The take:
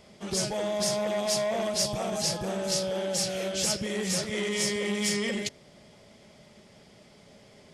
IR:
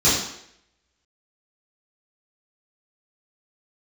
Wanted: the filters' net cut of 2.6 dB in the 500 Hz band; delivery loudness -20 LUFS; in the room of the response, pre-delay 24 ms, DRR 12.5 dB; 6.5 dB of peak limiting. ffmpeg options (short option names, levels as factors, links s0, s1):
-filter_complex "[0:a]equalizer=f=500:t=o:g=-3.5,alimiter=limit=0.0708:level=0:latency=1,asplit=2[s0][s1];[1:a]atrim=start_sample=2205,adelay=24[s2];[s1][s2]afir=irnorm=-1:irlink=0,volume=0.0266[s3];[s0][s3]amix=inputs=2:normalize=0,volume=3.55"